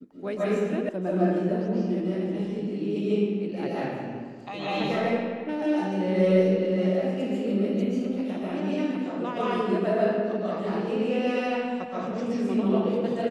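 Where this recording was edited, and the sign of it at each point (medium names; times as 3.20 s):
0.89 s: sound stops dead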